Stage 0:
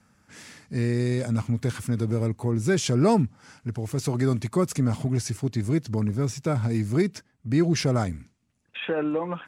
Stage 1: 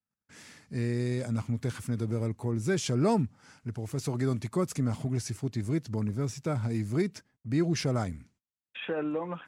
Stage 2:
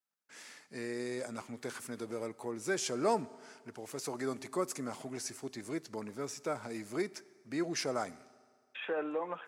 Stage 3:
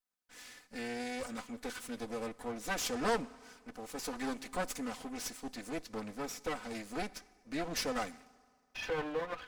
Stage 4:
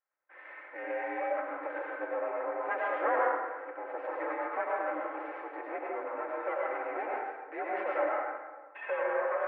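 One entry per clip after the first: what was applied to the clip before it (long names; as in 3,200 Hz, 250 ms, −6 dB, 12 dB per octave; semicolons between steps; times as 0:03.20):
noise gate −57 dBFS, range −30 dB; level −5.5 dB
high-pass filter 440 Hz 12 dB per octave; dynamic equaliser 3,200 Hz, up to −5 dB, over −54 dBFS, Q 1.6; on a send at −19 dB: convolution reverb RT60 1.9 s, pre-delay 4 ms
lower of the sound and its delayed copy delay 4 ms; dynamic equaliser 3,500 Hz, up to +4 dB, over −56 dBFS, Q 0.81
in parallel at +1.5 dB: downward compressor, threshold −44 dBFS, peak gain reduction 17 dB; on the sum: dense smooth reverb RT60 1.3 s, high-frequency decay 0.55×, pre-delay 85 ms, DRR −3.5 dB; single-sideband voice off tune +57 Hz 380–2,000 Hz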